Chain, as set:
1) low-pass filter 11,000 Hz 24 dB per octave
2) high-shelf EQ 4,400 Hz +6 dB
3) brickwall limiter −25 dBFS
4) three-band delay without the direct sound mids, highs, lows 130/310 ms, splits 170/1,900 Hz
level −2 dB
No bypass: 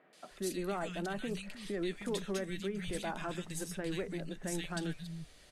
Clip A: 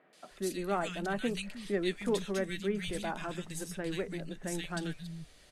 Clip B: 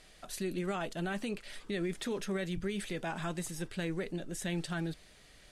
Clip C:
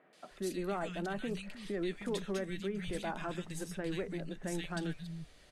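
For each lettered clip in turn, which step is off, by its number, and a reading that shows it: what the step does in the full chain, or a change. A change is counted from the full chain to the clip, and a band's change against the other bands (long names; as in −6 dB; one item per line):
3, change in crest factor +2.0 dB
4, echo-to-direct ratio −3.5 dB to none audible
2, 8 kHz band −4.5 dB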